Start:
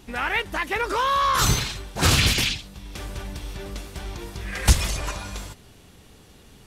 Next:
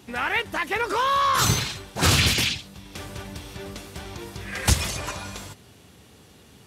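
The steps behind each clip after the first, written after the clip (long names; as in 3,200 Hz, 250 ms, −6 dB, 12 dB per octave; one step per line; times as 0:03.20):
high-pass filter 71 Hz 24 dB per octave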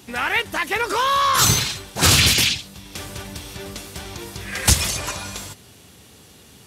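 high-shelf EQ 3,500 Hz +7 dB
level +2 dB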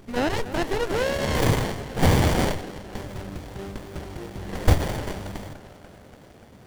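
feedback echo with a band-pass in the loop 291 ms, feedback 74%, band-pass 690 Hz, level −9 dB
windowed peak hold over 33 samples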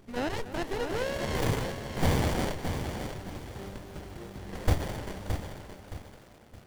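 feedback echo at a low word length 619 ms, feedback 35%, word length 7 bits, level −7 dB
level −7.5 dB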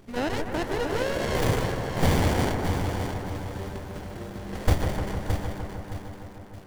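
bucket-brigade delay 152 ms, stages 2,048, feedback 76%, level −7 dB
level +3.5 dB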